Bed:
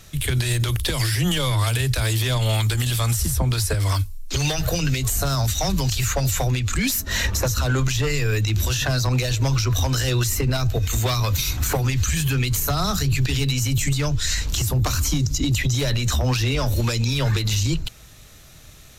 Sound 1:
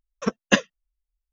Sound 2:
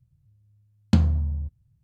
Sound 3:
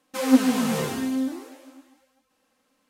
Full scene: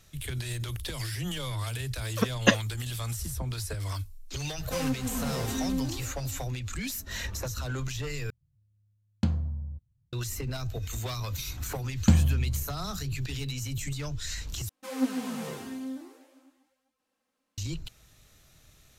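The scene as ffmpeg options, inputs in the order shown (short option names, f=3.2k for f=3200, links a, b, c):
-filter_complex "[3:a]asplit=2[a][b];[2:a]asplit=2[c][d];[0:a]volume=-12.5dB[e];[a]acompressor=threshold=-23dB:ratio=5:attack=3.6:release=480:knee=1:detection=rms[f];[e]asplit=3[g][h][i];[g]atrim=end=8.304[j];[c]atrim=end=1.83,asetpts=PTS-STARTPTS,volume=-8dB[k];[h]atrim=start=10.126:end=14.694[l];[b]atrim=end=2.89,asetpts=PTS-STARTPTS,volume=-11dB[m];[i]atrim=start=17.576[n];[1:a]atrim=end=1.32,asetpts=PTS-STARTPTS,volume=-2.5dB,afade=t=in:d=0.004:c=hsin,afade=t=out:st=1.316:d=0.004:c=hsin,adelay=1950[o];[f]atrim=end=2.89,asetpts=PTS-STARTPTS,volume=-3.5dB,afade=t=in:d=0.004:c=hsin,afade=t=out:st=2.886:d=0.004:c=hsin,adelay=201537S[p];[d]atrim=end=1.83,asetpts=PTS-STARTPTS,volume=-1.5dB,afade=t=in:d=0.004:c=hsin,afade=t=out:st=1.826:d=0.004:c=hsin,adelay=11150[q];[j][k]acrossfade=d=0.004:c1=hsin:c2=hsin[r];[r][l]acrossfade=d=0.004:c1=hsin:c2=hsin[s];[s][m]acrossfade=d=0.004:c1=hsin:c2=hsin[t];[t][n]acrossfade=d=0.004:c1=hsin:c2=hsin[u];[u][o][p][q]amix=inputs=4:normalize=0"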